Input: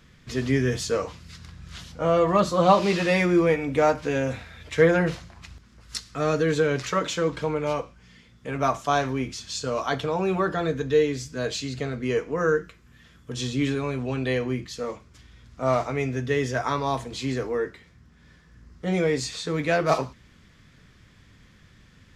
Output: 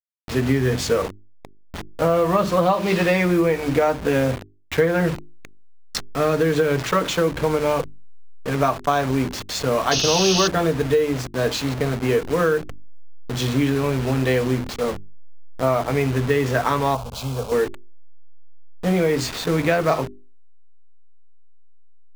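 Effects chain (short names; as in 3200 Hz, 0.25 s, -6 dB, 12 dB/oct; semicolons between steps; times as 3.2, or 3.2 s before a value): level-crossing sampler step -31.5 dBFS; high shelf 4700 Hz -6 dB; notches 50/100/150/200/250/300/350/400 Hz; compressor 10:1, threshold -23 dBFS, peak gain reduction 11.5 dB; 9.91–10.48 painted sound noise 2500–6600 Hz -31 dBFS; 16.95–17.52 fixed phaser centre 780 Hz, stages 4; gain +8.5 dB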